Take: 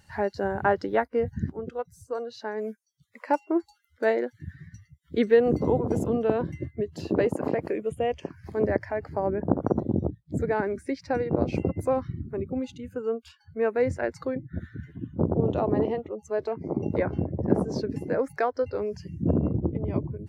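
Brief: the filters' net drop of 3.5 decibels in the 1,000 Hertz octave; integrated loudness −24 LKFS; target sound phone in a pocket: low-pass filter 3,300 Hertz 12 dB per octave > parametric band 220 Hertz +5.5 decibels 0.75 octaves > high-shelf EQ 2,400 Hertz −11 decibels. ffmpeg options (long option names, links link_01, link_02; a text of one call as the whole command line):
ffmpeg -i in.wav -af "lowpass=3300,equalizer=frequency=220:width_type=o:width=0.75:gain=5.5,equalizer=frequency=1000:width_type=o:gain=-3.5,highshelf=frequency=2400:gain=-11,volume=3dB" out.wav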